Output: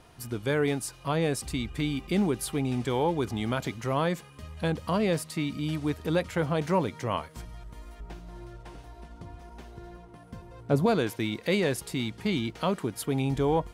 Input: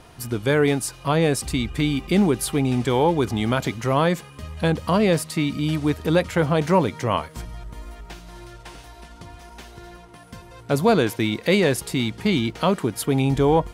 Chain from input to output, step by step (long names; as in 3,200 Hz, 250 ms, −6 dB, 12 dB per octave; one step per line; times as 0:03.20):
0:08.00–0:10.86: tilt shelving filter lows +6 dB, about 1,200 Hz
level −7.5 dB